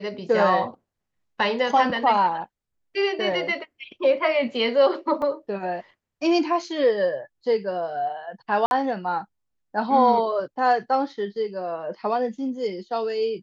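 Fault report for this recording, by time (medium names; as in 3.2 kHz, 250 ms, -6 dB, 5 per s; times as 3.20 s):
5.22 s: dropout 2.4 ms
8.66–8.71 s: dropout 51 ms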